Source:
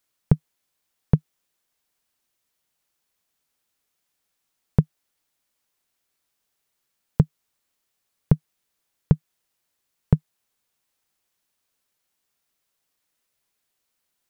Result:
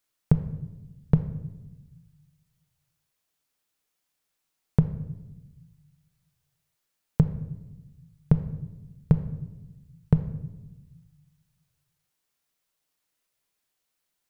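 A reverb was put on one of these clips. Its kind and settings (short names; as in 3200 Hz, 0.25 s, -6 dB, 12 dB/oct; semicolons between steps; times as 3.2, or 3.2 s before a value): shoebox room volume 490 m³, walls mixed, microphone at 0.48 m; gain -3 dB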